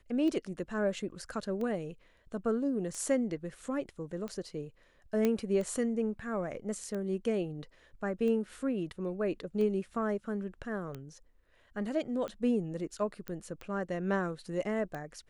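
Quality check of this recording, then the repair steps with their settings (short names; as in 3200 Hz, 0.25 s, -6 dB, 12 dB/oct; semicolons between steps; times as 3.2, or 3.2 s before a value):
tick 45 rpm -27 dBFS
5.25 pop -16 dBFS
13.28 pop -24 dBFS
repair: de-click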